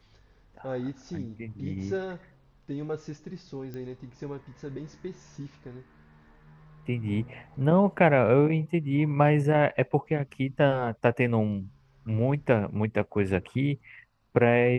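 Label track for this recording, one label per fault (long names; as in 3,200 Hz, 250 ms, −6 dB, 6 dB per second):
3.740000	3.740000	click −27 dBFS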